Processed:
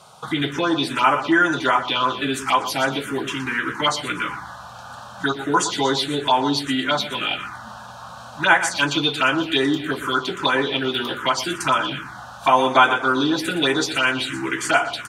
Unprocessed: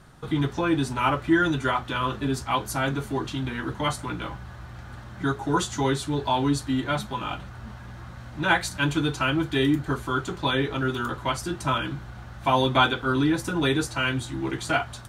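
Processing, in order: weighting filter A; feedback echo 0.119 s, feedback 31%, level -11.5 dB; on a send at -21 dB: reverb RT60 0.65 s, pre-delay 4 ms; on the sum: envelope phaser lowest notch 290 Hz, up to 4100 Hz, full sweep at -21 dBFS; dynamic EQ 4300 Hz, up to +4 dB, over -46 dBFS, Q 0.77; in parallel at +3 dB: compressor, threshold -34 dBFS, peak gain reduction 17.5 dB; on the sum: gain +5 dB

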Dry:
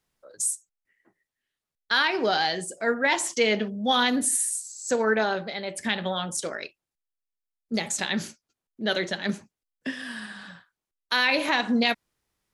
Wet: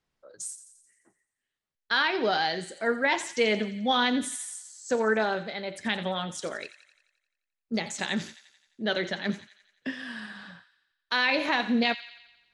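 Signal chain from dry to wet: air absorption 78 m; thin delay 87 ms, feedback 58%, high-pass 1800 Hz, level -12.5 dB; gain -1.5 dB

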